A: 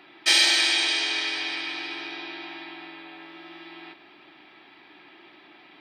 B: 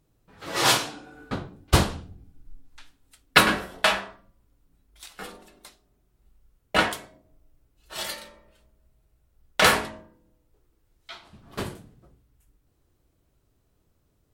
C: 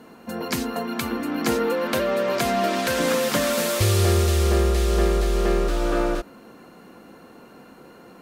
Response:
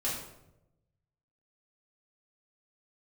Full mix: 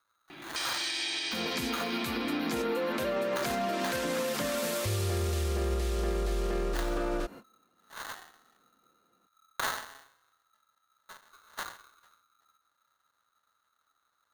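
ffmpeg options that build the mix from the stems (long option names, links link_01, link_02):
-filter_complex "[0:a]bass=frequency=250:gain=14,treble=frequency=4000:gain=4,acompressor=threshold=-27dB:ratio=6,adelay=300,volume=2dB[link_01];[1:a]acrusher=samples=40:mix=1:aa=0.000001,aeval=exprs='val(0)*sgn(sin(2*PI*1300*n/s))':channel_layout=same,volume=-15.5dB[link_02];[2:a]agate=range=-30dB:threshold=-40dB:ratio=16:detection=peak,adelay=1050,volume=-5dB[link_03];[link_02][link_03]amix=inputs=2:normalize=0,acontrast=88,alimiter=limit=-14dB:level=0:latency=1:release=35,volume=0dB[link_04];[link_01][link_04]amix=inputs=2:normalize=0,alimiter=limit=-23dB:level=0:latency=1:release=324"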